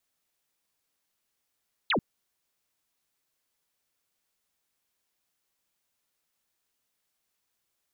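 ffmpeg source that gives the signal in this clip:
ffmpeg -f lavfi -i "aevalsrc='0.075*clip(t/0.002,0,1)*clip((0.09-t)/0.002,0,1)*sin(2*PI*4400*0.09/log(150/4400)*(exp(log(150/4400)*t/0.09)-1))':duration=0.09:sample_rate=44100" out.wav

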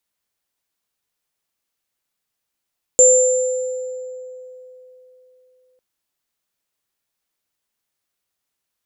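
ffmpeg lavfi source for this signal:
ffmpeg -f lavfi -i "aevalsrc='0.316*pow(10,-3*t/3.48)*sin(2*PI*508*t)+0.447*pow(10,-3*t/1.44)*sin(2*PI*7260*t)':duration=2.8:sample_rate=44100" out.wav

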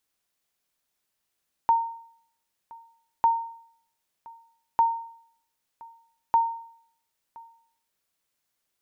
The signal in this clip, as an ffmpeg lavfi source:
ffmpeg -f lavfi -i "aevalsrc='0.211*(sin(2*PI*919*mod(t,1.55))*exp(-6.91*mod(t,1.55)/0.62)+0.0596*sin(2*PI*919*max(mod(t,1.55)-1.02,0))*exp(-6.91*max(mod(t,1.55)-1.02,0)/0.62))':duration=6.2:sample_rate=44100" out.wav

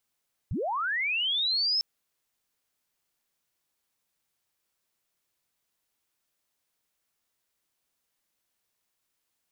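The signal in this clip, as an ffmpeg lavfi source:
ffmpeg -f lavfi -i "aevalsrc='pow(10,(-27.5+4.5*t/1.3)/20)*sin(2*PI*(60*t+5240*t*t/(2*1.3)))':duration=1.3:sample_rate=44100" out.wav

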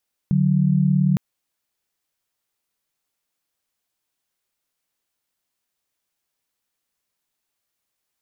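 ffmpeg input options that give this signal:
ffmpeg -f lavfi -i "aevalsrc='0.133*(sin(2*PI*146.83*t)+sin(2*PI*185*t))':duration=0.86:sample_rate=44100" out.wav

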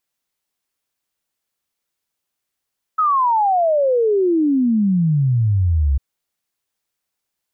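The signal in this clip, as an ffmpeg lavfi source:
ffmpeg -f lavfi -i "aevalsrc='0.224*clip(min(t,3-t)/0.01,0,1)*sin(2*PI*1300*3/log(65/1300)*(exp(log(65/1300)*t/3)-1))':duration=3:sample_rate=44100" out.wav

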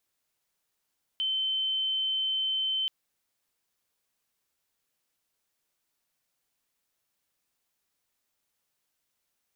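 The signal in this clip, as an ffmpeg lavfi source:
ffmpeg -f lavfi -i "sine=frequency=3080:duration=1.68:sample_rate=44100,volume=-7.94dB" out.wav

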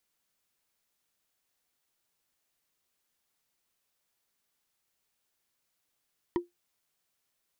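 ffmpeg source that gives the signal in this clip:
ffmpeg -f lavfi -i "aevalsrc='0.0891*pow(10,-3*t/0.16)*sin(2*PI*349*t)+0.0422*pow(10,-3*t/0.047)*sin(2*PI*962.2*t)+0.02*pow(10,-3*t/0.021)*sin(2*PI*1886*t)+0.00944*pow(10,-3*t/0.012)*sin(2*PI*3117.6*t)+0.00447*pow(10,-3*t/0.007)*sin(2*PI*4655.7*t)':duration=0.45:sample_rate=44100" out.wav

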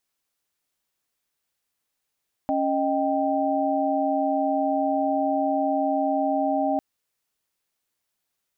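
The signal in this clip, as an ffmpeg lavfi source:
ffmpeg -f lavfi -i "aevalsrc='0.0562*(sin(2*PI*277.18*t)+sin(2*PI*622.25*t)+sin(2*PI*783.99*t))':duration=4.3:sample_rate=44100" out.wav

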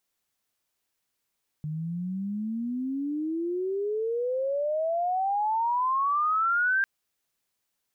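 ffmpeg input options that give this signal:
ffmpeg -f lavfi -i "aevalsrc='pow(10,(-29.5+8.5*t/5.2)/20)*sin(2*PI*150*5.2/log(1600/150)*(exp(log(1600/150)*t/5.2)-1))':duration=5.2:sample_rate=44100" out.wav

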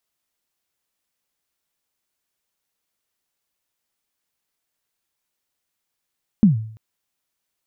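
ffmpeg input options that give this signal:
ffmpeg -f lavfi -i "aevalsrc='0.501*pow(10,-3*t/0.57)*sin(2*PI*(230*0.131/log(110/230)*(exp(log(110/230)*min(t,0.131)/0.131)-1)+110*max(t-0.131,0)))':duration=0.34:sample_rate=44100" out.wav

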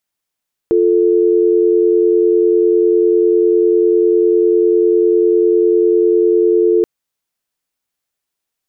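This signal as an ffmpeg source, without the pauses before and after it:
ffmpeg -f lavfi -i "aevalsrc='0.266*(sin(2*PI*350*t)+sin(2*PI*440*t))':duration=6.13:sample_rate=44100" out.wav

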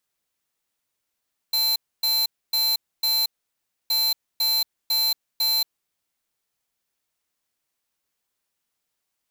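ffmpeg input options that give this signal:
ffmpeg -f lavfi -i "aevalsrc='0.0841*(2*lt(mod(4090*t,1),0.5)-1)*clip(min(mod(mod(t,2.37),0.5),0.23-mod(mod(t,2.37),0.5))/0.005,0,1)*lt(mod(t,2.37),2)':duration=4.74:sample_rate=44100" out.wav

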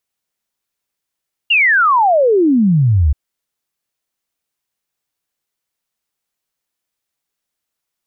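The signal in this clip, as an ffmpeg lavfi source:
ffmpeg -f lavfi -i "aevalsrc='0.376*clip(min(t,1.63-t)/0.01,0,1)*sin(2*PI*2900*1.63/log(67/2900)*(exp(log(67/2900)*t/1.63)-1))':duration=1.63:sample_rate=44100" out.wav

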